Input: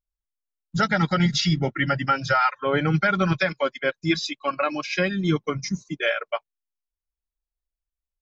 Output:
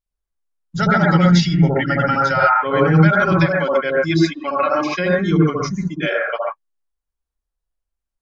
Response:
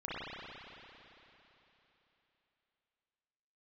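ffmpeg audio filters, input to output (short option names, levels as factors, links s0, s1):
-filter_complex "[1:a]atrim=start_sample=2205,atrim=end_sample=3528,asetrate=22050,aresample=44100[s0];[0:a][s0]afir=irnorm=-1:irlink=0,volume=1.33"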